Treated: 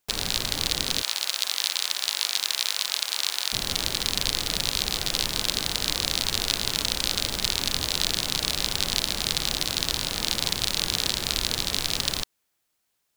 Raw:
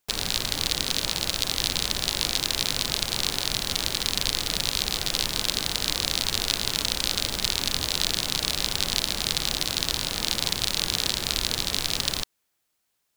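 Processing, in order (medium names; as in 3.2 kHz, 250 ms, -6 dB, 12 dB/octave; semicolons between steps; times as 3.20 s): 1.02–3.53 s: high-pass 900 Hz 12 dB/octave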